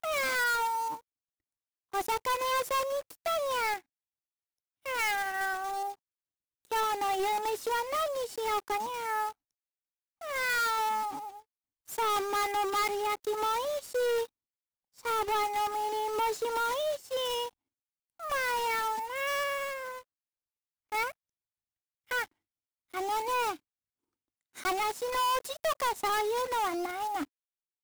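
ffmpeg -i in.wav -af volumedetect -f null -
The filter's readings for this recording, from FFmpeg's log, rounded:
mean_volume: -33.1 dB
max_volume: -26.3 dB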